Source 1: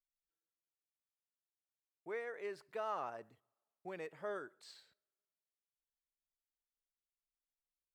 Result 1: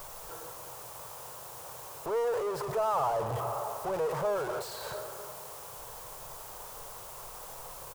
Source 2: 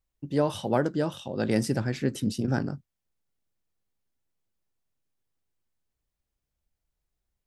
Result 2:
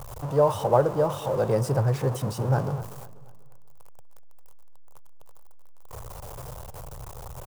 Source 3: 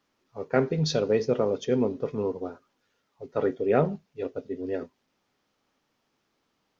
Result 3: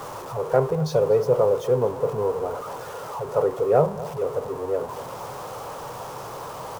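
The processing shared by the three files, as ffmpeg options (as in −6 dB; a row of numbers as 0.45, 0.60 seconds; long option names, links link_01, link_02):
-filter_complex "[0:a]aeval=exprs='val(0)+0.5*0.0355*sgn(val(0))':channel_layout=same,equalizer=frequency=125:width_type=o:width=1:gain=12,equalizer=frequency=250:width_type=o:width=1:gain=-12,equalizer=frequency=500:width_type=o:width=1:gain=11,equalizer=frequency=1000:width_type=o:width=1:gain=12,equalizer=frequency=2000:width_type=o:width=1:gain=-7,equalizer=frequency=4000:width_type=o:width=1:gain=-5,asplit=2[link_01][link_02];[link_02]adelay=244,lowpass=frequency=3800:poles=1,volume=-17dB,asplit=2[link_03][link_04];[link_04]adelay=244,lowpass=frequency=3800:poles=1,volume=0.42,asplit=2[link_05][link_06];[link_06]adelay=244,lowpass=frequency=3800:poles=1,volume=0.42,asplit=2[link_07][link_08];[link_08]adelay=244,lowpass=frequency=3800:poles=1,volume=0.42[link_09];[link_01][link_03][link_05][link_07][link_09]amix=inputs=5:normalize=0,volume=-5.5dB"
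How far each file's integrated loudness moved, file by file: +9.5, +3.5, +3.5 LU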